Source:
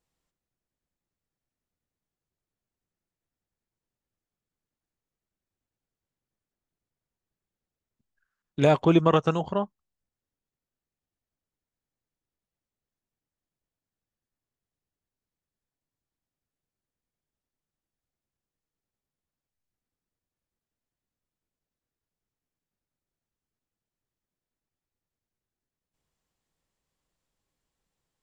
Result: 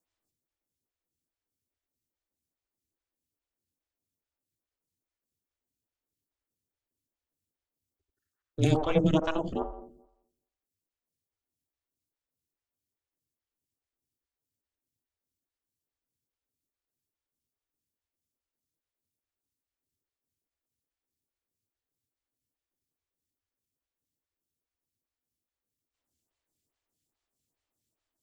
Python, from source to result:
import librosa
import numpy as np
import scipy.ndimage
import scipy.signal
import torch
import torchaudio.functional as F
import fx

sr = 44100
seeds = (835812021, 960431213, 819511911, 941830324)

p1 = scipy.signal.sosfilt(scipy.signal.butter(4, 76.0, 'highpass', fs=sr, output='sos'), x)
p2 = fx.high_shelf(p1, sr, hz=2500.0, db=11.0)
p3 = p2 + fx.echo_wet_lowpass(p2, sr, ms=86, feedback_pct=49, hz=550.0, wet_db=-4.0, dry=0)
p4 = p3 * np.sin(2.0 * np.pi * 160.0 * np.arange(len(p3)) / sr)
p5 = fx.peak_eq(p4, sr, hz=100.0, db=12.5, octaves=1.7)
p6 = fx.stagger_phaser(p5, sr, hz=2.4)
y = p6 * 10.0 ** (-2.5 / 20.0)